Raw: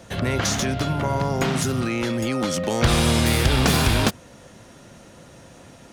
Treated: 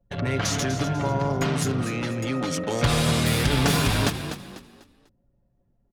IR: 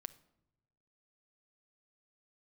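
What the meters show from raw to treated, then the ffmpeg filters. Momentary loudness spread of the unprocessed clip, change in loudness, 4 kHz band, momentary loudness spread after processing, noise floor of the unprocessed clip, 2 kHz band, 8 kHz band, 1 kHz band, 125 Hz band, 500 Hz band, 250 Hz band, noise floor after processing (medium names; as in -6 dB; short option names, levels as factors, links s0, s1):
6 LU, -2.5 dB, -2.5 dB, 7 LU, -47 dBFS, -2.5 dB, -3.0 dB, -2.5 dB, -1.5 dB, -2.5 dB, -2.5 dB, -68 dBFS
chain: -filter_complex "[0:a]asplit=2[s0][s1];[1:a]atrim=start_sample=2205,asetrate=25578,aresample=44100,adelay=7[s2];[s1][s2]afir=irnorm=-1:irlink=0,volume=0.668[s3];[s0][s3]amix=inputs=2:normalize=0,anlmdn=100,asplit=5[s4][s5][s6][s7][s8];[s5]adelay=247,afreqshift=43,volume=0.316[s9];[s6]adelay=494,afreqshift=86,volume=0.105[s10];[s7]adelay=741,afreqshift=129,volume=0.0343[s11];[s8]adelay=988,afreqshift=172,volume=0.0114[s12];[s4][s9][s10][s11][s12]amix=inputs=5:normalize=0,volume=0.631"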